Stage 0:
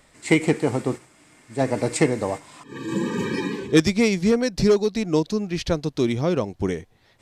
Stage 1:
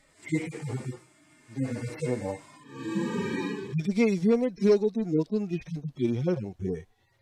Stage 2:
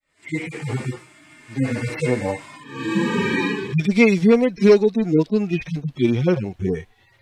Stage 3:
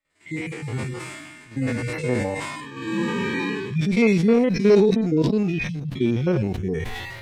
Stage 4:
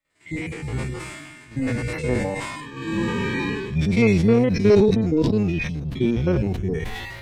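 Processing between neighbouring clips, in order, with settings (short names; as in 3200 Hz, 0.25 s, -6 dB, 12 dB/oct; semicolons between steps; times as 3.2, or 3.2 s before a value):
median-filter separation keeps harmonic; gain -3.5 dB
opening faded in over 0.80 s; EQ curve 620 Hz 0 dB, 2600 Hz +7 dB, 6000 Hz -1 dB; gain +8.5 dB
stepped spectrum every 50 ms; sustainer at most 31 dB/s; gain -3 dB
octaver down 1 oct, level -5 dB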